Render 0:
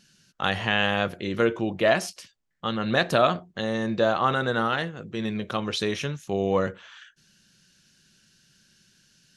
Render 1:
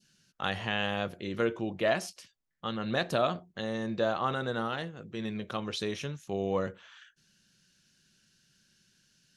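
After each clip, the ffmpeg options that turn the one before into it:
-af "adynamicequalizer=threshold=0.0141:dfrequency=1700:dqfactor=1:tfrequency=1700:tqfactor=1:attack=5:release=100:ratio=0.375:range=2.5:mode=cutabove:tftype=bell,volume=0.473"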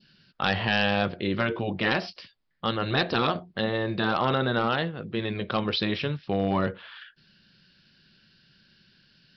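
-af "afftfilt=real='re*lt(hypot(re,im),0.178)':imag='im*lt(hypot(re,im),0.178)':win_size=1024:overlap=0.75,aresample=11025,asoftclip=type=hard:threshold=0.0596,aresample=44100,volume=2.82"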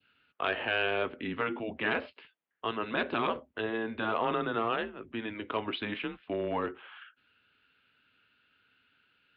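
-af "highpass=f=330:t=q:w=0.5412,highpass=f=330:t=q:w=1.307,lowpass=f=3200:t=q:w=0.5176,lowpass=f=3200:t=q:w=0.7071,lowpass=f=3200:t=q:w=1.932,afreqshift=-110,volume=0.631"

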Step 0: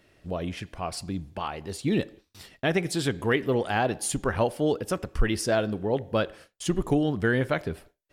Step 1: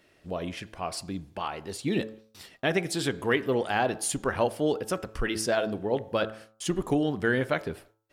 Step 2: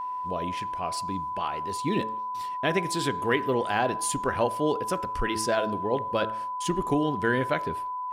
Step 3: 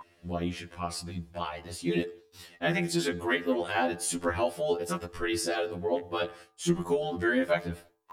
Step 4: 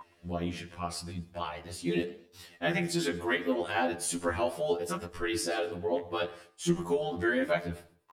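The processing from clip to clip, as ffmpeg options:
-af "lowshelf=f=130:g=-9.5,bandreject=f=109.5:t=h:w=4,bandreject=f=219:t=h:w=4,bandreject=f=328.5:t=h:w=4,bandreject=f=438:t=h:w=4,bandreject=f=547.5:t=h:w=4,bandreject=f=657:t=h:w=4,bandreject=f=766.5:t=h:w=4,bandreject=f=876:t=h:w=4,bandreject=f=985.5:t=h:w=4,bandreject=f=1095:t=h:w=4,bandreject=f=1204.5:t=h:w=4,bandreject=f=1314:t=h:w=4,bandreject=f=1423.5:t=h:w=4,bandreject=f=1533:t=h:w=4,bandreject=f=1642.5:t=h:w=4"
-af "aeval=exprs='val(0)+0.0316*sin(2*PI*1000*n/s)':c=same"
-af "afftfilt=real='re*2*eq(mod(b,4),0)':imag='im*2*eq(mod(b,4),0)':win_size=2048:overlap=0.75,volume=1.19"
-af "flanger=delay=6.4:depth=9.6:regen=-83:speed=0.79:shape=triangular,aecho=1:1:122|244:0.0794|0.027,volume=1.41"

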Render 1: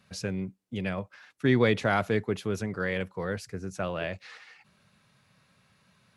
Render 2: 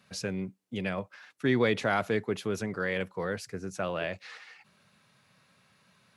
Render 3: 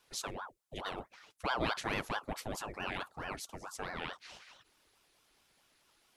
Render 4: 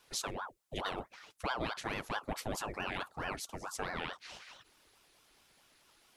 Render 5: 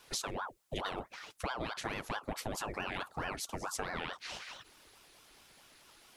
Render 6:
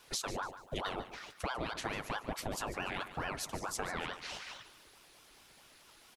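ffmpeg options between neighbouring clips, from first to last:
-filter_complex "[0:a]highpass=f=170:p=1,asplit=2[s0][s1];[s1]alimiter=limit=0.075:level=0:latency=1:release=114,volume=0.708[s2];[s0][s2]amix=inputs=2:normalize=0,volume=0.668"
-af "highshelf=f=3700:g=11.5,aeval=exprs='val(0)*sin(2*PI*710*n/s+710*0.8/4.6*sin(2*PI*4.6*n/s))':c=same,volume=0.473"
-af "alimiter=level_in=1.58:limit=0.0631:level=0:latency=1:release=471,volume=0.631,volume=1.58"
-af "acompressor=threshold=0.01:ratio=6,volume=2"
-af "aecho=1:1:146|292|438|584:0.224|0.0806|0.029|0.0104"

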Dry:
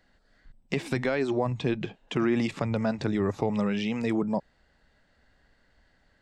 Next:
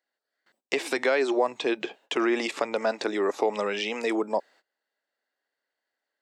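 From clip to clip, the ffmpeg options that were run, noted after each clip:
-af "agate=range=0.0794:threshold=0.00224:ratio=16:detection=peak,highpass=f=350:w=0.5412,highpass=f=350:w=1.3066,highshelf=f=5600:g=4.5,volume=1.78"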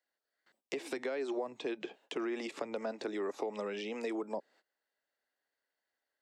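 -filter_complex "[0:a]acrossover=split=260|540[s0][s1][s2];[s0]acompressor=threshold=0.00794:ratio=4[s3];[s1]acompressor=threshold=0.0178:ratio=4[s4];[s2]acompressor=threshold=0.01:ratio=4[s5];[s3][s4][s5]amix=inputs=3:normalize=0,volume=0.631"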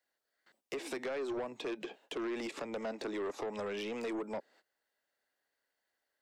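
-af "aeval=exprs='(tanh(63.1*val(0)+0.05)-tanh(0.05))/63.1':c=same,volume=1.41"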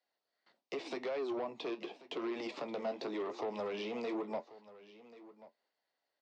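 -af "flanger=delay=9:depth=7.8:regen=-54:speed=0.87:shape=triangular,highpass=f=120:w=0.5412,highpass=f=120:w=1.3066,equalizer=f=700:t=q:w=4:g=4,equalizer=f=1000:t=q:w=4:g=3,equalizer=f=1600:t=q:w=4:g=-7,equalizer=f=4400:t=q:w=4:g=3,lowpass=f=5500:w=0.5412,lowpass=f=5500:w=1.3066,aecho=1:1:1086:0.126,volume=1.41"

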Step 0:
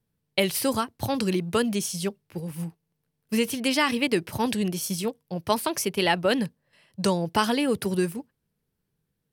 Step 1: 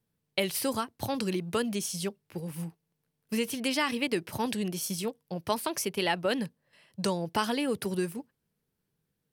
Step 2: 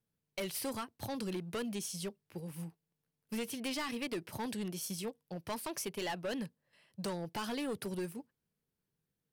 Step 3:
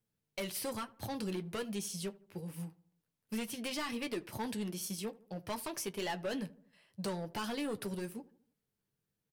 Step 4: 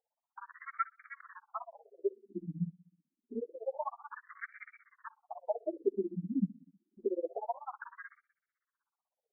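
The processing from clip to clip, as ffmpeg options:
-filter_complex "[0:a]asplit=2[s0][s1];[s1]acompressor=threshold=0.0251:ratio=6,volume=1.19[s2];[s0][s2]amix=inputs=2:normalize=0,lowshelf=f=98:g=-7,volume=0.422"
-af "volume=21.1,asoftclip=hard,volume=0.0473,volume=0.473"
-filter_complex "[0:a]flanger=delay=9.1:depth=1.5:regen=-47:speed=0.23:shape=sinusoidal,asplit=2[s0][s1];[s1]adelay=79,lowpass=f=1300:p=1,volume=0.106,asplit=2[s2][s3];[s3]adelay=79,lowpass=f=1300:p=1,volume=0.53,asplit=2[s4][s5];[s5]adelay=79,lowpass=f=1300:p=1,volume=0.53,asplit=2[s6][s7];[s7]adelay=79,lowpass=f=1300:p=1,volume=0.53[s8];[s0][s2][s4][s6][s8]amix=inputs=5:normalize=0,volume=1.58"
-af "tremolo=f=16:d=1,afftfilt=real='re*between(b*sr/1024,210*pow(1700/210,0.5+0.5*sin(2*PI*0.27*pts/sr))/1.41,210*pow(1700/210,0.5+0.5*sin(2*PI*0.27*pts/sr))*1.41)':imag='im*between(b*sr/1024,210*pow(1700/210,0.5+0.5*sin(2*PI*0.27*pts/sr))/1.41,210*pow(1700/210,0.5+0.5*sin(2*PI*0.27*pts/sr))*1.41)':win_size=1024:overlap=0.75,volume=4.22"

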